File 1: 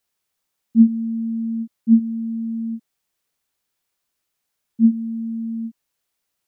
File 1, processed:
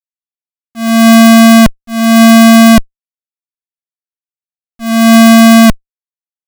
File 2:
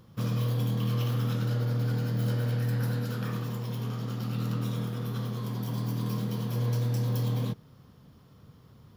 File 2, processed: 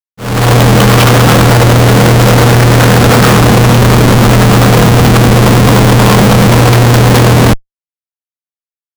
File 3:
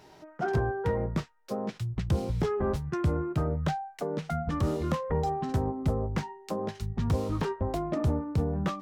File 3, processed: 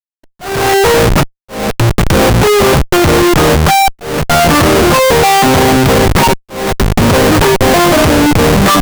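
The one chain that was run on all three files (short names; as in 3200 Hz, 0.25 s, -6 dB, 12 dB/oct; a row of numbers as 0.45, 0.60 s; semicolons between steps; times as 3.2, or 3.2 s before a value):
overdrive pedal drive 21 dB, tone 4300 Hz, clips at -3.5 dBFS; Schmitt trigger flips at -27.5 dBFS; auto swell 0.358 s; normalise peaks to -1.5 dBFS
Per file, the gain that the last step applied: +18.5, +22.0, +15.0 dB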